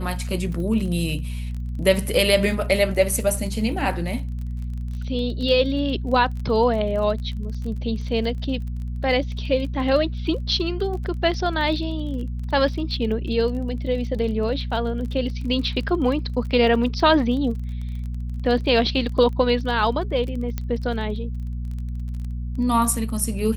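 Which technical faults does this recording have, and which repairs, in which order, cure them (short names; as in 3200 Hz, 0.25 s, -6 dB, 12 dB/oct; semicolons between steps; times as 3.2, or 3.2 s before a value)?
crackle 27/s -31 dBFS
hum 60 Hz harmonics 4 -28 dBFS
20.58 pop -13 dBFS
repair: de-click; de-hum 60 Hz, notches 4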